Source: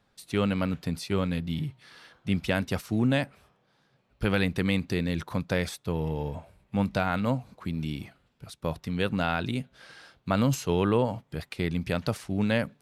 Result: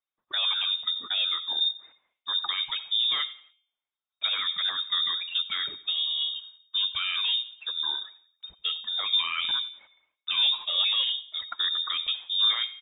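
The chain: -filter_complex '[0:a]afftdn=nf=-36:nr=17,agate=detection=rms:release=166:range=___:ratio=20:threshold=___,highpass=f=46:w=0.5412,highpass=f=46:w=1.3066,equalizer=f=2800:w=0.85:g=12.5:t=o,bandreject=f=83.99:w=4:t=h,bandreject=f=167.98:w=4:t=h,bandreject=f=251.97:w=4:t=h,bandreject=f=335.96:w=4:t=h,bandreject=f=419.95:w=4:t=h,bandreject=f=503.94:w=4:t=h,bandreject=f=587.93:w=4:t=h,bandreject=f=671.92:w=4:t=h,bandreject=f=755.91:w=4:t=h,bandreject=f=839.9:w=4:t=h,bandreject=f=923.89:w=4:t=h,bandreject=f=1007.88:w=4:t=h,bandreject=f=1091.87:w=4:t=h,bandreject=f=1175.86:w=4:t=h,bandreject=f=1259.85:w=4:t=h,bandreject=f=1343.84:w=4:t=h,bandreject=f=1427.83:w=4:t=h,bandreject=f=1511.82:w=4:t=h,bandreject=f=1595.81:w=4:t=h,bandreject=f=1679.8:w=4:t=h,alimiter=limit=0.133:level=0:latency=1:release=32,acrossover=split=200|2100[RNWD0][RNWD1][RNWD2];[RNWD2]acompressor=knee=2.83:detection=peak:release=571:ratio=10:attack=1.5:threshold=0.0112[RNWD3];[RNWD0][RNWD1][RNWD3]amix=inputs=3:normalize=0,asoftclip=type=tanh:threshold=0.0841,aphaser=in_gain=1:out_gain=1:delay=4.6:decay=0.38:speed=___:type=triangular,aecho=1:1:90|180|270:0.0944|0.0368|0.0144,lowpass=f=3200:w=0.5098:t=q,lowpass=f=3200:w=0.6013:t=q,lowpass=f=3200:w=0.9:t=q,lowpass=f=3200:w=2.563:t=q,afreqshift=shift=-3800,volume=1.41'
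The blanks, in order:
0.158, 0.002, 1.2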